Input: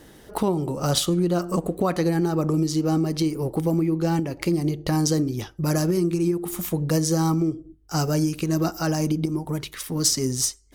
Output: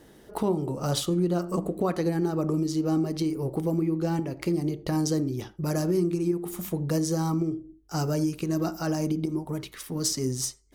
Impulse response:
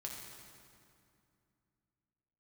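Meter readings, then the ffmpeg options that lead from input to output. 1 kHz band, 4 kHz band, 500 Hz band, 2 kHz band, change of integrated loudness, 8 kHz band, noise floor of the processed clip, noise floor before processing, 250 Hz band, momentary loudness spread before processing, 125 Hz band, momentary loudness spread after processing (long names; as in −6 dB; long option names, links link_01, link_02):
−5.0 dB, −7.0 dB, −3.0 dB, −6.0 dB, −4.0 dB, −7.0 dB, −53 dBFS, −50 dBFS, −3.5 dB, 6 LU, −4.5 dB, 6 LU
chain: -filter_complex "[0:a]asplit=2[link_01][link_02];[link_02]bandpass=frequency=370:width_type=q:width=0.5:csg=0[link_03];[1:a]atrim=start_sample=2205,afade=type=out:start_time=0.14:duration=0.01,atrim=end_sample=6615[link_04];[link_03][link_04]afir=irnorm=-1:irlink=0,volume=-0.5dB[link_05];[link_01][link_05]amix=inputs=2:normalize=0,volume=-7dB"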